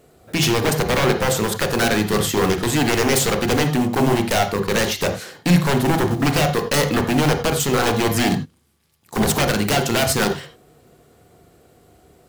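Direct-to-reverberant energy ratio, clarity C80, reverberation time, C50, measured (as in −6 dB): 5.0 dB, 13.0 dB, non-exponential decay, 10.0 dB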